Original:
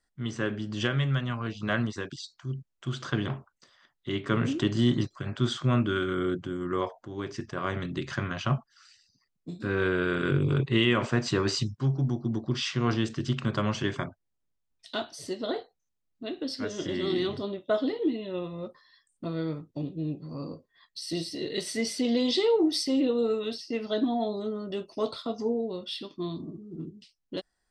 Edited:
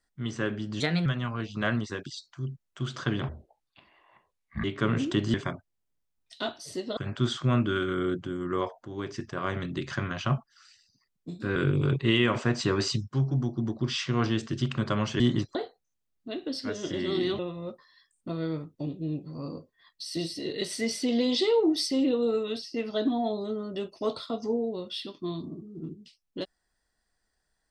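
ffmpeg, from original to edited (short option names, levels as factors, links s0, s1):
-filter_complex "[0:a]asplit=11[s0][s1][s2][s3][s4][s5][s6][s7][s8][s9][s10];[s0]atrim=end=0.804[s11];[s1]atrim=start=0.8:end=1.12,asetpts=PTS-STARTPTS,asetrate=54684,aresample=44100[s12];[s2]atrim=start=1.116:end=3.354[s13];[s3]atrim=start=3.35:end=4.12,asetpts=PTS-STARTPTS,asetrate=25137,aresample=44100[s14];[s4]atrim=start=4.116:end=4.822[s15];[s5]atrim=start=13.868:end=15.502[s16];[s6]atrim=start=5.168:end=9.762[s17];[s7]atrim=start=10.228:end=13.872[s18];[s8]atrim=start=4.818:end=5.172[s19];[s9]atrim=start=15.498:end=17.342[s20];[s10]atrim=start=18.348[s21];[s11][s12]acrossfade=d=0.004:c1=hsin:c2=hsin[s22];[s22][s13]acrossfade=d=0.004:c1=hsin:c2=hsin[s23];[s23][s14]acrossfade=d=0.004:c1=hsin:c2=hsin[s24];[s24][s15]acrossfade=d=0.004:c1=hsin:c2=hsin[s25];[s25][s16]acrossfade=d=0.004:c1=hsin:c2=hsin[s26];[s26][s17]acrossfade=d=0.004:c1=hsin:c2=hsin[s27];[s27][s18]acrossfade=d=0.004:c1=hsin:c2=hsin[s28];[s28][s19]acrossfade=d=0.004:c1=hsin:c2=hsin[s29];[s29][s20]acrossfade=d=0.004:c1=hsin:c2=hsin[s30];[s30][s21]acrossfade=d=0.004:c1=hsin:c2=hsin"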